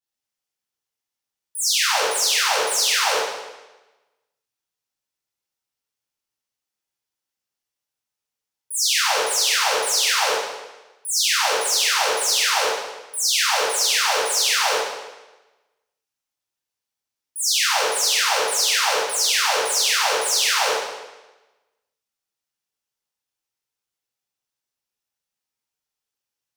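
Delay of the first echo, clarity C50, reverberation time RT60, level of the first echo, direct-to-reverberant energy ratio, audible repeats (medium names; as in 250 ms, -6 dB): no echo, -1.0 dB, 1.1 s, no echo, -8.0 dB, no echo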